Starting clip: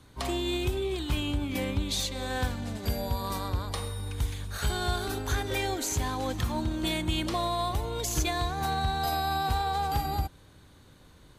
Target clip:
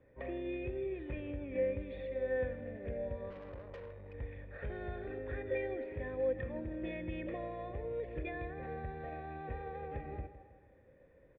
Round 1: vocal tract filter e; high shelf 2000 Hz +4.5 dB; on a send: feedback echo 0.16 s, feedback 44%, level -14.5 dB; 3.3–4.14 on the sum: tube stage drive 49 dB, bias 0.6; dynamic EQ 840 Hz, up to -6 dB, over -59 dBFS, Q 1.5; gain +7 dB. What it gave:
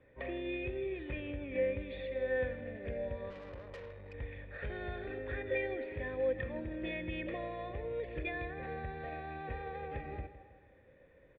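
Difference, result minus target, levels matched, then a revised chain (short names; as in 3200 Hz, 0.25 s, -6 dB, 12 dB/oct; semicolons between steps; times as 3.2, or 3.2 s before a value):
4000 Hz band +7.5 dB
vocal tract filter e; high shelf 2000 Hz -7 dB; on a send: feedback echo 0.16 s, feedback 44%, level -14.5 dB; 3.3–4.14 on the sum: tube stage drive 49 dB, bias 0.6; dynamic EQ 840 Hz, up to -6 dB, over -59 dBFS, Q 1.5; gain +7 dB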